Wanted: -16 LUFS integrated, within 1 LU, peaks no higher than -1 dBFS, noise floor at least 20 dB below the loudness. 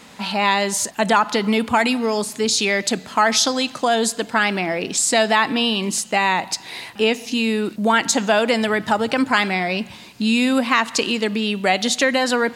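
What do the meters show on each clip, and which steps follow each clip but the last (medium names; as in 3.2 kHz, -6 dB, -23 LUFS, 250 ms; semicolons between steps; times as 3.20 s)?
tick rate 39 per s; loudness -19.0 LUFS; peak level -3.0 dBFS; loudness target -16.0 LUFS
-> de-click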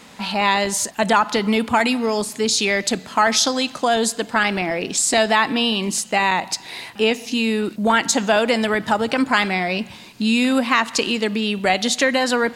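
tick rate 0.24 per s; loudness -19.0 LUFS; peak level -3.0 dBFS; loudness target -16.0 LUFS
-> trim +3 dB; peak limiter -1 dBFS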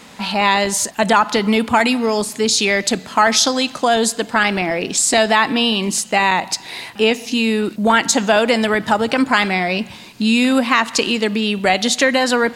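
loudness -16.0 LUFS; peak level -1.0 dBFS; noise floor -38 dBFS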